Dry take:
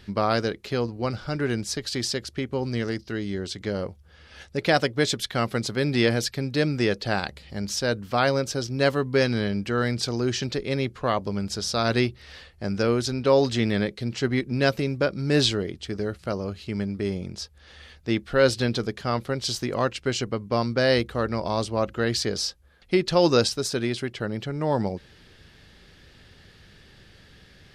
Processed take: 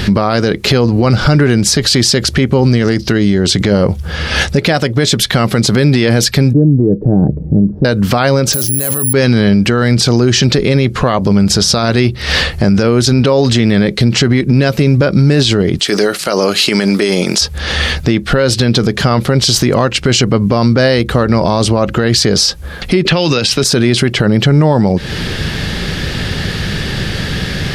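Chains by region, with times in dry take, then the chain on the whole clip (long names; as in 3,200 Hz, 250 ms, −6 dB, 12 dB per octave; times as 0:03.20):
0:06.53–0:07.85: transistor ladder low-pass 450 Hz, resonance 25% + comb filter 6.6 ms, depth 34%
0:08.53–0:09.13: bad sample-rate conversion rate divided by 4×, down none, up zero stuff + compressor whose output falls as the input rises −25 dBFS
0:15.79–0:17.41: high-pass filter 280 Hz + spectral tilt +2.5 dB per octave
0:23.05–0:23.64: parametric band 2,700 Hz +12 dB 1.2 octaves + multiband upward and downward compressor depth 100%
whole clip: parametric band 160 Hz +5.5 dB 0.97 octaves; downward compressor 12 to 1, threshold −33 dBFS; boost into a limiter +33.5 dB; level −1 dB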